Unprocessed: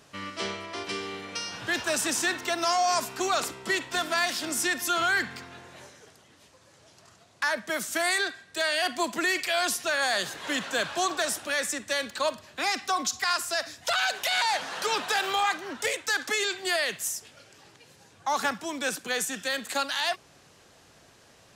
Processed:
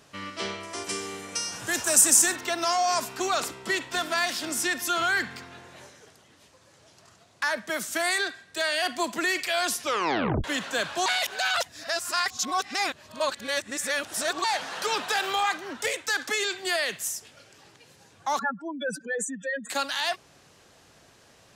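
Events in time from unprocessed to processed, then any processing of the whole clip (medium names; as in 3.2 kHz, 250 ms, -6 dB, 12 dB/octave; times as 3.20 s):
0.63–2.36 s: resonant high shelf 5.5 kHz +11.5 dB, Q 1.5
9.80 s: tape stop 0.64 s
11.06–14.44 s: reverse
18.39–19.70 s: spectral contrast enhancement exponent 3.4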